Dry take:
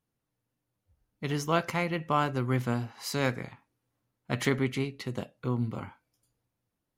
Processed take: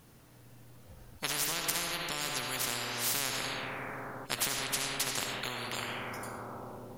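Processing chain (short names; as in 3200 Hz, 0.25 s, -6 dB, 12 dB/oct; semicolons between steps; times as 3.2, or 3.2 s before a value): reverb RT60 2.0 s, pre-delay 30 ms, DRR 4 dB; compressor, threshold -28 dBFS, peak gain reduction 8.5 dB; spectral compressor 10:1; gain +4.5 dB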